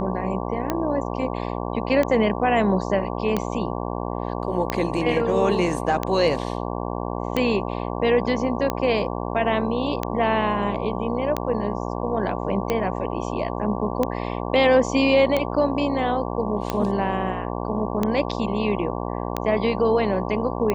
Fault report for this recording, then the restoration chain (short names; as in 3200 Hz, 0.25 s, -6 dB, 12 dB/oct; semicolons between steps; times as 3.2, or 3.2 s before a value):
buzz 60 Hz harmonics 19 -28 dBFS
tick 45 rpm -9 dBFS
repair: de-click; de-hum 60 Hz, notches 19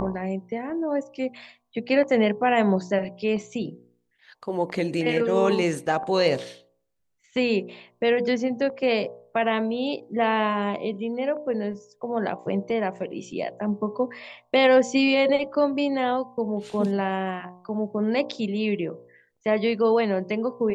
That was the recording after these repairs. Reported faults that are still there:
none